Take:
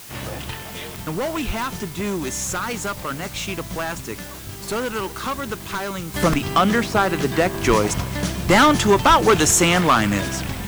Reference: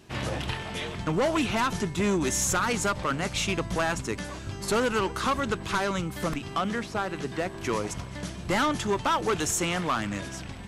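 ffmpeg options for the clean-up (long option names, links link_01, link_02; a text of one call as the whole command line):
ffmpeg -i in.wav -filter_complex "[0:a]adeclick=threshold=4,asplit=3[link_01][link_02][link_03];[link_01]afade=type=out:start_time=1.46:duration=0.02[link_04];[link_02]highpass=frequency=140:width=0.5412,highpass=frequency=140:width=1.3066,afade=type=in:start_time=1.46:duration=0.02,afade=type=out:start_time=1.58:duration=0.02[link_05];[link_03]afade=type=in:start_time=1.58:duration=0.02[link_06];[link_04][link_05][link_06]amix=inputs=3:normalize=0,asplit=3[link_07][link_08][link_09];[link_07]afade=type=out:start_time=7.67:duration=0.02[link_10];[link_08]highpass=frequency=140:width=0.5412,highpass=frequency=140:width=1.3066,afade=type=in:start_time=7.67:duration=0.02,afade=type=out:start_time=7.79:duration=0.02[link_11];[link_09]afade=type=in:start_time=7.79:duration=0.02[link_12];[link_10][link_11][link_12]amix=inputs=3:normalize=0,asplit=3[link_13][link_14][link_15];[link_13]afade=type=out:start_time=9.08:duration=0.02[link_16];[link_14]highpass=frequency=140:width=0.5412,highpass=frequency=140:width=1.3066,afade=type=in:start_time=9.08:duration=0.02,afade=type=out:start_time=9.2:duration=0.02[link_17];[link_15]afade=type=in:start_time=9.2:duration=0.02[link_18];[link_16][link_17][link_18]amix=inputs=3:normalize=0,afwtdn=0.01,asetnsamples=nb_out_samples=441:pad=0,asendcmd='6.14 volume volume -11.5dB',volume=0dB" out.wav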